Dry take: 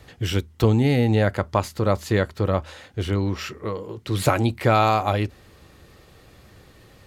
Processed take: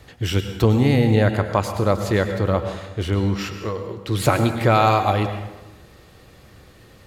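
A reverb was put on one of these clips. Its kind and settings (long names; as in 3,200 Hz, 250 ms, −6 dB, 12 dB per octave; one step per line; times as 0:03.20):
dense smooth reverb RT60 1.1 s, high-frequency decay 0.75×, pre-delay 90 ms, DRR 7.5 dB
level +1.5 dB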